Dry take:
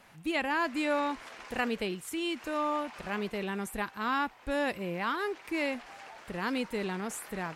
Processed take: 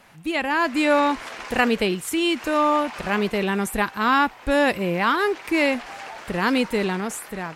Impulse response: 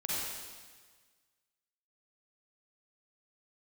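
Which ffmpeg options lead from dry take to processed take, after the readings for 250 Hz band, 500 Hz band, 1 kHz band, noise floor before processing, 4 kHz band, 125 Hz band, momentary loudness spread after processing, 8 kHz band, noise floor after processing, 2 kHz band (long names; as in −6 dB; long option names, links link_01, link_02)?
+11.0 dB, +11.0 dB, +11.0 dB, −54 dBFS, +11.0 dB, +11.0 dB, 9 LU, +10.0 dB, −44 dBFS, +10.5 dB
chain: -af "dynaudnorm=framelen=120:gausssize=11:maxgain=6dB,volume=5.5dB"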